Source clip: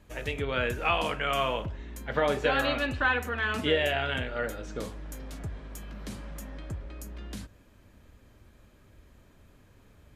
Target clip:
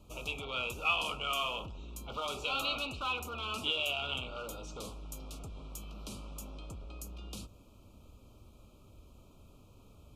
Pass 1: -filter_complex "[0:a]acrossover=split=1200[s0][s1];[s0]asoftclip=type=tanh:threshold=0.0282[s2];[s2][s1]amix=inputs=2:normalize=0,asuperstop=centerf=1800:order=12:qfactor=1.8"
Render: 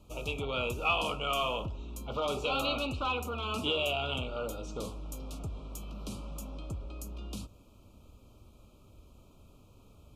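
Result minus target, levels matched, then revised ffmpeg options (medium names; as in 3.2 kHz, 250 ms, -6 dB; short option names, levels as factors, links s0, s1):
saturation: distortion -6 dB
-filter_complex "[0:a]acrossover=split=1200[s0][s1];[s0]asoftclip=type=tanh:threshold=0.0075[s2];[s2][s1]amix=inputs=2:normalize=0,asuperstop=centerf=1800:order=12:qfactor=1.8"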